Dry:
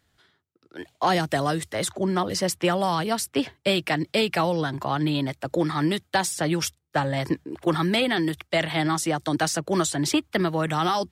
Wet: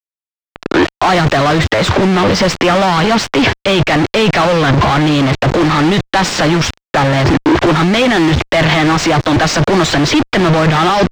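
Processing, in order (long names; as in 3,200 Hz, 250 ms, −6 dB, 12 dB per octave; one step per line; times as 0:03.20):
in parallel at −6 dB: soft clipping −25.5 dBFS, distortion −8 dB
on the sum: automatic gain control gain up to 11 dB
log-companded quantiser 2 bits
parametric band 10,000 Hz −6.5 dB 0.61 octaves
fuzz pedal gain 28 dB, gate −29 dBFS
high-frequency loss of the air 150 metres
boost into a limiter +19.5 dB
one half of a high-frequency compander decoder only
level −6 dB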